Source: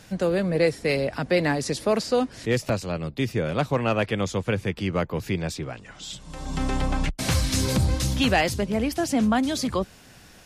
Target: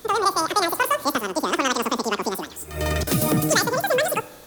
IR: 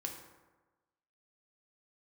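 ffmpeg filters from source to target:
-filter_complex "[0:a]asetrate=103194,aresample=44100,asplit=2[link_01][link_02];[1:a]atrim=start_sample=2205,highshelf=frequency=4900:gain=11[link_03];[link_02][link_03]afir=irnorm=-1:irlink=0,volume=-11dB[link_04];[link_01][link_04]amix=inputs=2:normalize=0"

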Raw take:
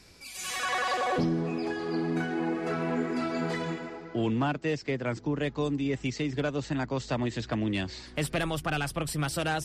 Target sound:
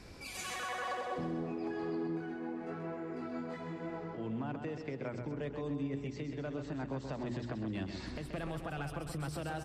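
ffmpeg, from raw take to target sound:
ffmpeg -i in.wav -filter_complex "[0:a]highshelf=frequency=2100:gain=-12,bandreject=frequency=60:width_type=h:width=6,bandreject=frequency=120:width_type=h:width=6,bandreject=frequency=180:width_type=h:width=6,bandreject=frequency=240:width_type=h:width=6,bandreject=frequency=300:width_type=h:width=6,bandreject=frequency=360:width_type=h:width=6,bandreject=frequency=420:width_type=h:width=6,acompressor=threshold=-41dB:ratio=6,alimiter=level_in=13.5dB:limit=-24dB:level=0:latency=1:release=227,volume=-13.5dB,asettb=1/sr,asplit=3[link_01][link_02][link_03];[link_01]atrim=end=2.074[link_04];[link_02]atrim=start=2.07:end=4.18,asetpts=PTS-STARTPTS,afade=type=in:duration=0.004:curve=qsin,afade=type=out:start_time=2.106:duration=0.004:curve=qsin,flanger=delay=18:depth=2.3:speed=1.1[link_05];[link_03]atrim=start=4.176[link_06];[link_04][link_05]acrossfade=duration=0.004:curve1=hsin:curve2=qsin[link_07];[link_07][link_06]acrossfade=duration=0.004:curve1=qsin:curve2=hsin,aecho=1:1:130|260|390|520|650|780|910:0.447|0.246|0.135|0.0743|0.0409|0.0225|0.0124,volume=6.5dB" out.wav

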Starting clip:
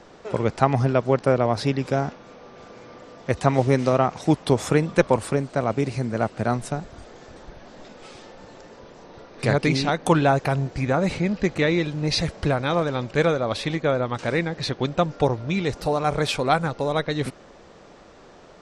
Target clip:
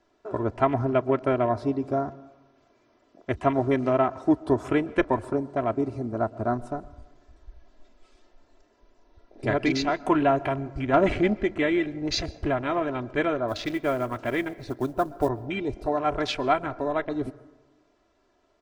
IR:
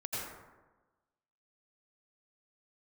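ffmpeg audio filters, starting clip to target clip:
-filter_complex "[0:a]aecho=1:1:3:0.75,afwtdn=0.0316,asplit=3[link_01][link_02][link_03];[link_01]afade=type=out:start_time=10.92:duration=0.02[link_04];[link_02]acontrast=80,afade=type=in:start_time=10.92:duration=0.02,afade=type=out:start_time=11.33:duration=0.02[link_05];[link_03]afade=type=in:start_time=11.33:duration=0.02[link_06];[link_04][link_05][link_06]amix=inputs=3:normalize=0,asettb=1/sr,asplit=3[link_07][link_08][link_09];[link_07]atrim=end=13.484[link_10];[link_08]atrim=start=13.48:end=15.29,asetpts=PTS-STARTPTS,afade=type=in:duration=0.004:curve=qsin,afade=type=out:start_time=1.806:duration=0.004:curve=qsin,acrusher=bits=7:mode=log:mix=0:aa=0.000001[link_11];[link_09]atrim=start=15.286[link_12];[link_10][link_11]acrossfade=duration=0.004:curve1=hsin:curve2=qsin[link_13];[link_13][link_12]acrossfade=duration=0.004:curve1=qsin:curve2=hsin,asplit=2[link_14][link_15];[1:a]atrim=start_sample=2205,adelay=33[link_16];[link_15][link_16]afir=irnorm=-1:irlink=0,volume=-22.5dB[link_17];[link_14][link_17]amix=inputs=2:normalize=0,volume=-4.5dB"

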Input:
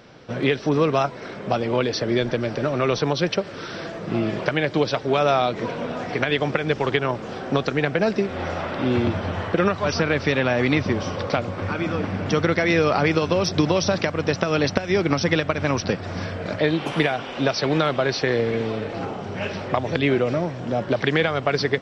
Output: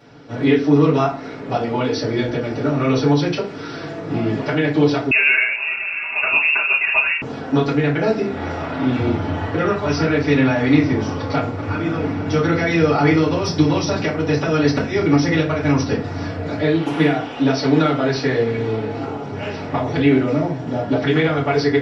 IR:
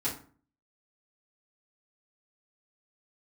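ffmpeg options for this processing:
-filter_complex "[1:a]atrim=start_sample=2205[link_01];[0:a][link_01]afir=irnorm=-1:irlink=0,asettb=1/sr,asplit=3[link_02][link_03][link_04];[link_02]atrim=end=5.114[link_05];[link_03]atrim=start=5.11:end=7.22,asetpts=PTS-STARTPTS,afade=type=in:duration=0.004:curve=qsin,afade=type=out:start_time=2.106:duration=0.004:curve=qsin,lowpass=frequency=2500:width_type=q:width=0.5098,lowpass=frequency=2500:width_type=q:width=0.6013,lowpass=frequency=2500:width_type=q:width=0.9,lowpass=frequency=2500:width_type=q:width=2.563,afreqshift=-2900[link_06];[link_04]atrim=start=7.216[link_07];[link_05][link_06]acrossfade=duration=0.004:curve1=hsin:curve2=qsin[link_08];[link_08][link_07]acrossfade=duration=0.004:curve1=qsin:curve2=hsin,volume=-4dB"

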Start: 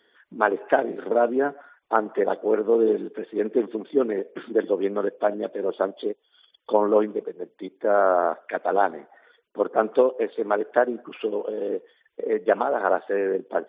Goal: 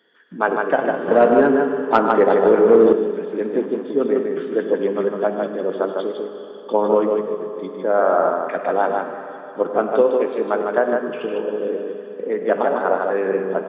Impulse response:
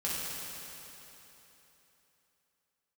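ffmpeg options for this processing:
-filter_complex "[0:a]lowshelf=frequency=110:width_type=q:width=3:gain=-9.5,aecho=1:1:100|153:0.178|0.631,asplit=2[link_01][link_02];[1:a]atrim=start_sample=2205[link_03];[link_02][link_03]afir=irnorm=-1:irlink=0,volume=-10.5dB[link_04];[link_01][link_04]amix=inputs=2:normalize=0,asettb=1/sr,asplit=3[link_05][link_06][link_07];[link_05]atrim=end=1.084[link_08];[link_06]atrim=start=1.08:end=2.93,asetpts=PTS-STARTPTS,afade=type=in:duration=0.004:curve=qsin,afade=type=out:start_time=1.846:duration=0.004:curve=qsin,acontrast=69[link_09];[link_07]atrim=start=2.926[link_10];[link_08][link_09]acrossfade=duration=0.004:curve1=hsin:curve2=qsin[link_11];[link_11][link_10]acrossfade=duration=0.004:curve1=qsin:curve2=hsin,aresample=16000,aresample=44100,volume=-1dB"

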